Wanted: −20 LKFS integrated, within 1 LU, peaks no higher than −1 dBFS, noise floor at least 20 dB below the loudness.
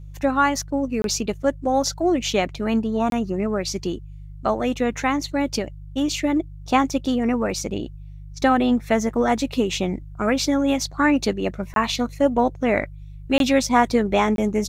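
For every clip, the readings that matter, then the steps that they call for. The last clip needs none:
number of dropouts 5; longest dropout 22 ms; mains hum 50 Hz; hum harmonics up to 150 Hz; level of the hum −35 dBFS; integrated loudness −22.0 LKFS; sample peak −4.5 dBFS; target loudness −20.0 LKFS
→ repair the gap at 0:01.02/0:03.10/0:11.74/0:13.38/0:14.36, 22 ms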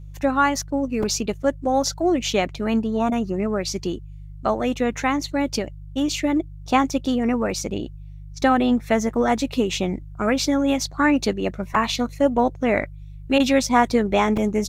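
number of dropouts 0; mains hum 50 Hz; hum harmonics up to 150 Hz; level of the hum −35 dBFS
→ hum removal 50 Hz, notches 3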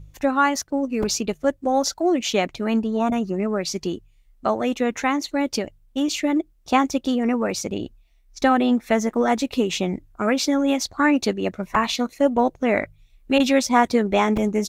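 mains hum none found; integrated loudness −22.0 LKFS; sample peak −4.5 dBFS; target loudness −20.0 LKFS
→ level +2 dB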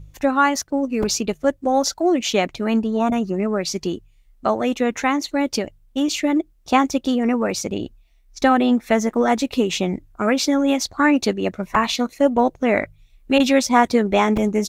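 integrated loudness −20.0 LKFS; sample peak −2.5 dBFS; background noise floor −55 dBFS

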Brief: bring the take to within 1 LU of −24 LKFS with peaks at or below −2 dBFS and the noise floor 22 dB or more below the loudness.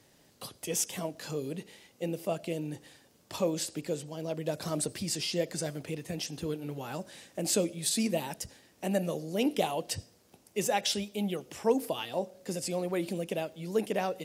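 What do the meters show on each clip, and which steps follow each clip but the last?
crackle rate 28 per second; integrated loudness −33.0 LKFS; sample peak −14.0 dBFS; target loudness −24.0 LKFS
→ click removal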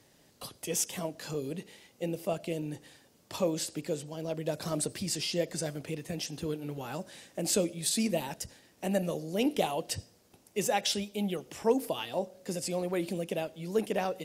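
crackle rate 0.14 per second; integrated loudness −33.5 LKFS; sample peak −14.0 dBFS; target loudness −24.0 LKFS
→ level +9.5 dB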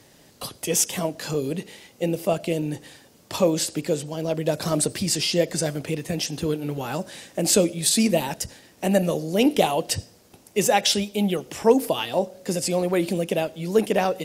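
integrated loudness −24.0 LKFS; sample peak −4.5 dBFS; background noise floor −54 dBFS

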